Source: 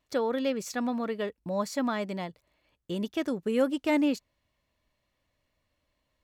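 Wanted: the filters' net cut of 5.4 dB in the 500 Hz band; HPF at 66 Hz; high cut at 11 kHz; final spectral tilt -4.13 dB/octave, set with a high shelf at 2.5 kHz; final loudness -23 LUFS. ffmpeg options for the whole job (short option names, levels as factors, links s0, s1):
-af "highpass=66,lowpass=11000,equalizer=f=500:t=o:g=-6.5,highshelf=f=2500:g=4,volume=2.99"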